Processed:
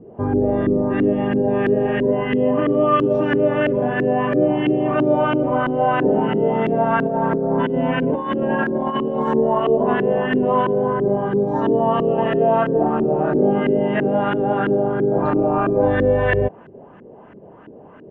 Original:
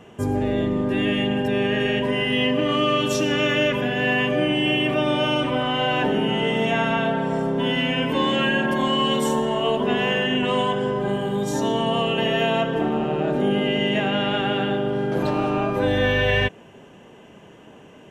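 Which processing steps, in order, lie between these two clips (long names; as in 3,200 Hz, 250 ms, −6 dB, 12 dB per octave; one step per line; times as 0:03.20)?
auto-filter low-pass saw up 3 Hz 330–1,700 Hz
0:07.06–0:09.29: compressor whose output falls as the input rises −21 dBFS, ratio −0.5
level +1.5 dB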